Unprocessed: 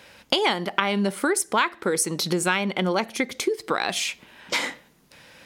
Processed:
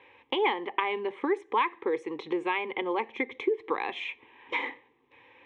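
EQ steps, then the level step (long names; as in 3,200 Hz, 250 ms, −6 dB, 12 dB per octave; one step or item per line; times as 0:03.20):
loudspeaker in its box 150–3,100 Hz, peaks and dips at 160 Hz −9 dB, 340 Hz −3 dB, 580 Hz −4 dB, 1,300 Hz −4 dB, 1,900 Hz −3 dB, 2,800 Hz −7 dB
phaser with its sweep stopped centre 970 Hz, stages 8
0.0 dB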